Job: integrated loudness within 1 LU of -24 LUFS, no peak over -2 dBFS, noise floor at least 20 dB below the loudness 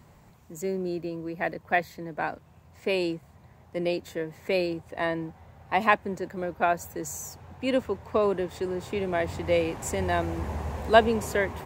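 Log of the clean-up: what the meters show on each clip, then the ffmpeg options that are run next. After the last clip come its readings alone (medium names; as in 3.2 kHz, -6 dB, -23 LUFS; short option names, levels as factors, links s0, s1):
loudness -28.5 LUFS; peak level -4.5 dBFS; loudness target -24.0 LUFS
-> -af "volume=1.68,alimiter=limit=0.794:level=0:latency=1"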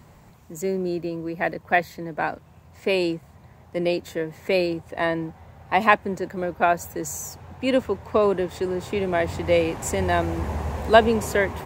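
loudness -24.0 LUFS; peak level -2.0 dBFS; noise floor -51 dBFS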